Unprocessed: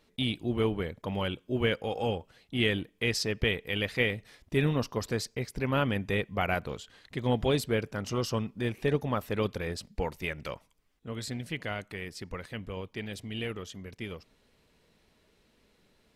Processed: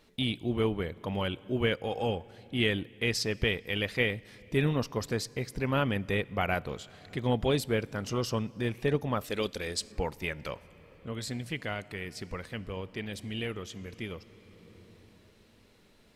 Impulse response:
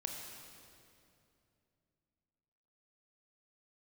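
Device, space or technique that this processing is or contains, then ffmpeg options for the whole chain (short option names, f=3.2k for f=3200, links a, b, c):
ducked reverb: -filter_complex "[0:a]asplit=3[a][b][c];[1:a]atrim=start_sample=2205[d];[b][d]afir=irnorm=-1:irlink=0[e];[c]apad=whole_len=712421[f];[e][f]sidechaincompress=threshold=-47dB:ratio=4:attack=9.1:release=729,volume=0dB[g];[a][g]amix=inputs=2:normalize=0,asettb=1/sr,asplit=3[h][i][j];[h]atrim=end=9.244[k];[i]atrim=start=9.24:end=9.92,asetpts=PTS-STARTPTS,afade=t=in:d=0.004:c=qsin,afade=t=out:st=0.676:d=0.004:c=qsin,equalizer=f=125:t=o:w=1:g=-11,equalizer=f=1k:t=o:w=1:g=-4,equalizer=f=4k:t=o:w=1:g=6,equalizer=f=8k:t=o:w=1:g=9[l];[j]atrim=start=9.916[m];[k][l]acrossfade=d=0.004:c1=hsin:c2=qsin[n];[n][m]acrossfade=d=0.004:c1=qsin:c2=hsin,volume=-1dB"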